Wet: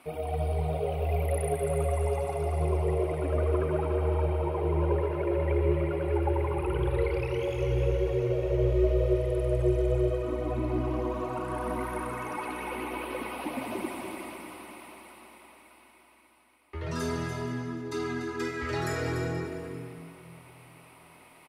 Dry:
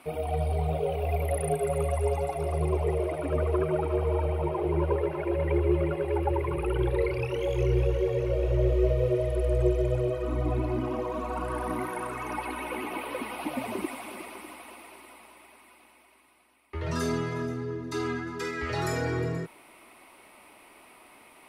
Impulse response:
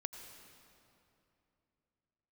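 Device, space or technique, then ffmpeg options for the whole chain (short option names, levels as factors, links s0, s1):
cave: -filter_complex "[0:a]aecho=1:1:292:0.376[s0];[1:a]atrim=start_sample=2205[s1];[s0][s1]afir=irnorm=-1:irlink=0"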